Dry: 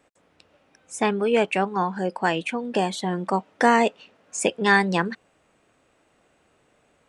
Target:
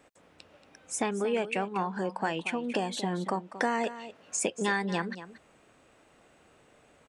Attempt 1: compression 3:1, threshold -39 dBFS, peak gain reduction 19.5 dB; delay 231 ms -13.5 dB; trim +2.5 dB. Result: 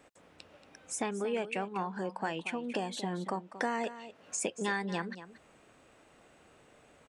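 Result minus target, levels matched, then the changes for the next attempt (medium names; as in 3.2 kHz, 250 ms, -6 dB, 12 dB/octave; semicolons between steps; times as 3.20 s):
compression: peak gain reduction +4.5 dB
change: compression 3:1, threshold -32.5 dBFS, peak gain reduction 15 dB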